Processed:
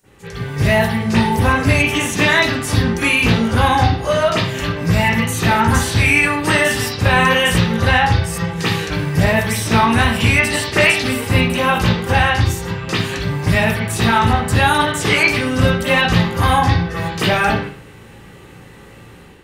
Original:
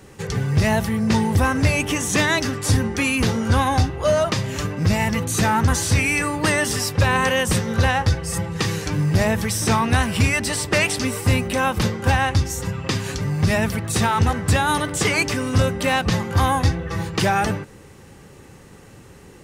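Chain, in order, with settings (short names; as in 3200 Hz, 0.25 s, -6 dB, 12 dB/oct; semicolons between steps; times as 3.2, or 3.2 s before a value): pre-emphasis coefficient 0.8; AGC gain up to 8.5 dB; reverb, pre-delay 35 ms, DRR -17.5 dB; gain -8.5 dB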